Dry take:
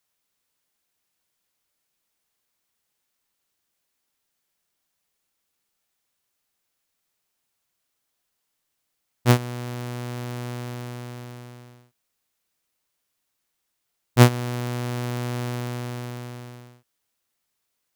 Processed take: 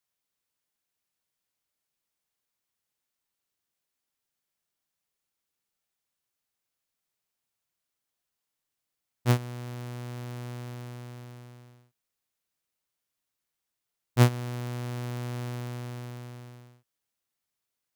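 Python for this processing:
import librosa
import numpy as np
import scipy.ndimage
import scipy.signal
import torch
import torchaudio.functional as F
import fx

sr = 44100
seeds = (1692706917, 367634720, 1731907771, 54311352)

y = fx.peak_eq(x, sr, hz=120.0, db=3.0, octaves=0.77)
y = y * 10.0 ** (-8.0 / 20.0)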